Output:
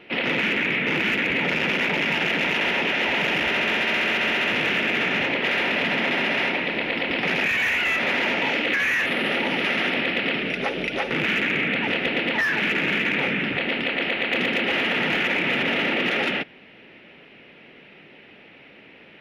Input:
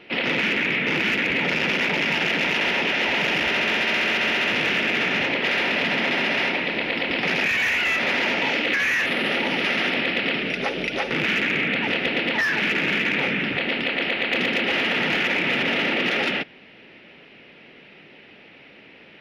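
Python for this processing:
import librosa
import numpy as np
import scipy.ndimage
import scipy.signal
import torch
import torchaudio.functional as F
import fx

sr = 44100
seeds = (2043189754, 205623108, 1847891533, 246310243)

y = fx.peak_eq(x, sr, hz=5000.0, db=-6.0, octaves=0.73)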